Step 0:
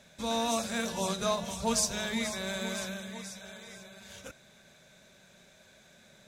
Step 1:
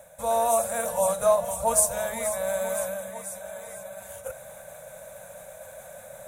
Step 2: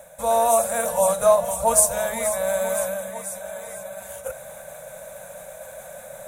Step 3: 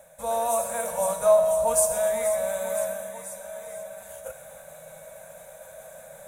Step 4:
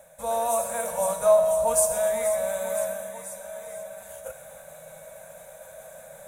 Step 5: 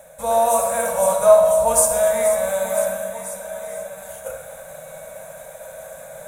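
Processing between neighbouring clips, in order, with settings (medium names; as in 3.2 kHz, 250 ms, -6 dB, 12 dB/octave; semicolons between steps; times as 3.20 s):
FFT filter 120 Hz 0 dB, 370 Hz -20 dB, 520 Hz +12 dB, 5 kHz -16 dB, 9.3 kHz +13 dB; reverse; upward compressor, threshold -36 dBFS; reverse; trim +2.5 dB
peaking EQ 96 Hz -9 dB 0.36 oct; trim +4.5 dB
feedback comb 160 Hz, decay 1.6 s, mix 80%; two-band feedback delay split 960 Hz, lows 259 ms, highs 127 ms, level -14 dB; trim +6.5 dB
no audible change
reverberation RT60 0.50 s, pre-delay 42 ms, DRR 4 dB; trim +6 dB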